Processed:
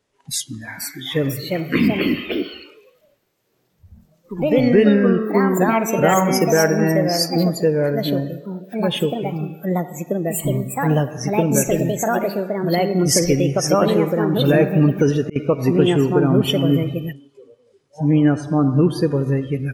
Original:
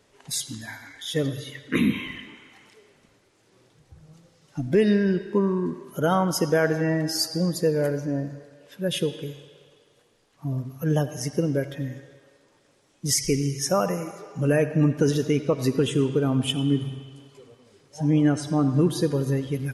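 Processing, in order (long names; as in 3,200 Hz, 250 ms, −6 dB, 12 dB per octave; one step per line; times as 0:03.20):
delay with pitch and tempo change per echo 538 ms, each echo +3 semitones, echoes 2
noise reduction from a noise print of the clip's start 15 dB
0:14.44–0:15.36: volume swells 338 ms
level +5 dB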